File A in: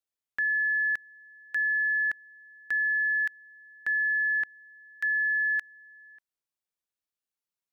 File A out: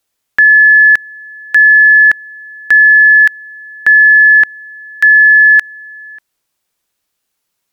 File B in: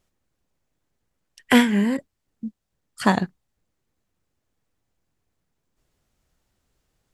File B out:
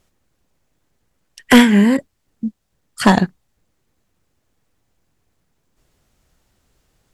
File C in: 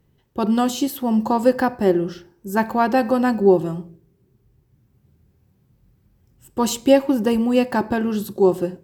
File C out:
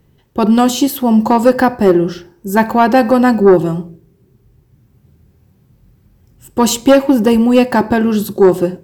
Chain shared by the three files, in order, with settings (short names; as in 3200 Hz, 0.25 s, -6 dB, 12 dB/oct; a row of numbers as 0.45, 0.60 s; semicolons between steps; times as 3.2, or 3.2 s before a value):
sine folder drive 5 dB, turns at -2 dBFS; normalise peaks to -2 dBFS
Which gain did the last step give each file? +12.0, 0.0, 0.0 dB